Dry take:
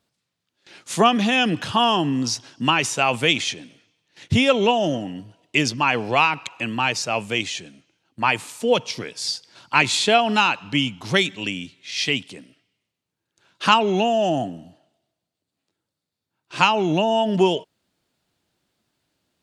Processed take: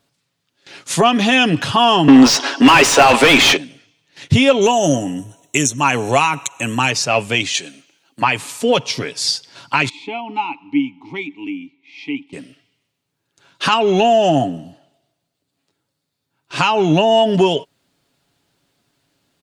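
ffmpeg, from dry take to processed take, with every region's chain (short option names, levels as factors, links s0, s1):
-filter_complex "[0:a]asettb=1/sr,asplit=3[s0][s1][s2];[s0]atrim=end=2.084[s3];[s1]atrim=start=2.08:end=3.57,asetpts=PTS-STARTPTS,afade=t=in:d=0.004:c=qsin,afade=t=out:st=1.486:d=0.004:c=qsin,highpass=f=250:w=0.5412,highpass=f=250:w=1.3066,asplit=2[s4][s5];[s5]highpass=f=720:p=1,volume=31.6,asoftclip=type=tanh:threshold=0.668[s6];[s4][s6]amix=inputs=2:normalize=0,lowpass=f=1500:p=1,volume=0.501[s7];[s2]atrim=start=3.566[s8];[s3][s7]acrossfade=d=0.004:c1=hsin:c2=qsin[s9];[s9][s8]acrossfade=d=0.004:c1=qsin:c2=hsin,asettb=1/sr,asplit=3[s10][s11][s12];[s10]atrim=end=4.614[s13];[s11]atrim=start=4.61:end=6.91,asetpts=PTS-STARTPTS,afade=t=in:d=0.004:c=qsin,afade=t=out:st=2.296:d=0.004:c=qsin,asuperstop=centerf=4800:order=12:qfactor=3.7,highshelf=f=4800:t=q:w=1.5:g=13[s14];[s12]atrim=start=6.906[s15];[s13][s14]acrossfade=d=0.004:c1=hsin:c2=qsin[s16];[s16][s15]acrossfade=d=0.004:c1=qsin:c2=hsin,asettb=1/sr,asplit=3[s17][s18][s19];[s17]atrim=end=7.544[s20];[s18]atrim=start=7.54:end=8.22,asetpts=PTS-STARTPTS,afade=t=in:d=0.004:c=qsin,afade=t=out:st=0.676:d=0.004:c=qsin,highpass=240,highshelf=f=3300:g=8,bandreject=f=5300:w=16[s21];[s19]atrim=start=8.216[s22];[s20][s21]acrossfade=d=0.004:c1=hsin:c2=qsin[s23];[s23][s22]acrossfade=d=0.004:c1=qsin:c2=hsin,asettb=1/sr,asplit=3[s24][s25][s26];[s24]atrim=end=9.894[s27];[s25]atrim=start=9.89:end=12.33,asetpts=PTS-STARTPTS,afade=t=in:d=0.004:c=qsin,afade=t=out:st=2.436:d=0.004:c=qsin,asplit=3[s28][s29][s30];[s28]bandpass=f=300:t=q:w=8,volume=1[s31];[s29]bandpass=f=870:t=q:w=8,volume=0.501[s32];[s30]bandpass=f=2240:t=q:w=8,volume=0.355[s33];[s31][s32][s33]amix=inputs=3:normalize=0,highshelf=f=5100:g=-4[s34];[s26]atrim=start=12.326[s35];[s27][s34]acrossfade=d=0.004:c1=hsin:c2=qsin[s36];[s36][s35]acrossfade=d=0.004:c1=qsin:c2=hsin,alimiter=limit=0.335:level=0:latency=1:release=215,aecho=1:1:7.2:0.39,acontrast=26,volume=1.26"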